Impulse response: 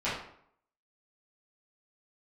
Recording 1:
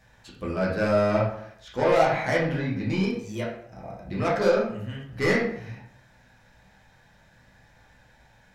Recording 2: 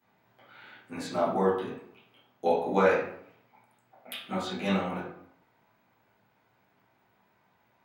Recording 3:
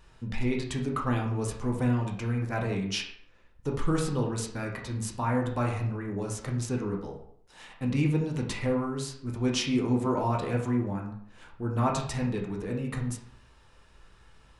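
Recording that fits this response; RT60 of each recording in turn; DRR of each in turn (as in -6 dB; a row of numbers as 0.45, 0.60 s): 2; 0.65, 0.65, 0.65 s; -6.0, -12.0, -0.5 dB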